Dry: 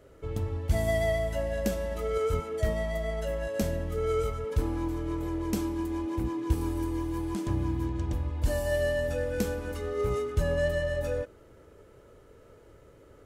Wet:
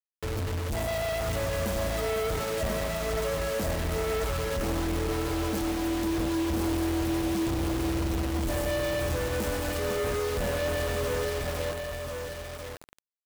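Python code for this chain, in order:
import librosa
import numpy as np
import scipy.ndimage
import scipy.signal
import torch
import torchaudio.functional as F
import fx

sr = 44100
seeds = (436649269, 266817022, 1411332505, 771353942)

y = fx.echo_feedback(x, sr, ms=501, feedback_pct=30, wet_db=-10.0)
y = fx.quant_companded(y, sr, bits=2)
y = y + 10.0 ** (-5.0 / 20.0) * np.pad(y, (int(1038 * sr / 1000.0), 0))[:len(y)]
y = F.gain(torch.from_numpy(y), -4.0).numpy()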